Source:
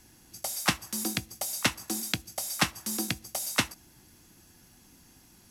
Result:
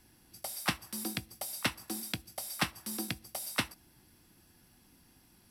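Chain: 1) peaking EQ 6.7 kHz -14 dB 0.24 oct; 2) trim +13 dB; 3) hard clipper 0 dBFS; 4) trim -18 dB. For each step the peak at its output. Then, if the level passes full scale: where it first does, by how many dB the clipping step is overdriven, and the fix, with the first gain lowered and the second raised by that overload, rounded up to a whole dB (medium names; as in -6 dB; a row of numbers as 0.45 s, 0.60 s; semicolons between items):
-7.0 dBFS, +6.0 dBFS, 0.0 dBFS, -18.0 dBFS; step 2, 6.0 dB; step 2 +7 dB, step 4 -12 dB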